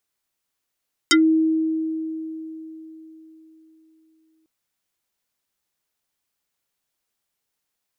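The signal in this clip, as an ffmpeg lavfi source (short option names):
-f lavfi -i "aevalsrc='0.282*pow(10,-3*t/3.96)*sin(2*PI*319*t+5.5*pow(10,-3*t/0.11)*sin(2*PI*5.38*319*t))':d=3.35:s=44100"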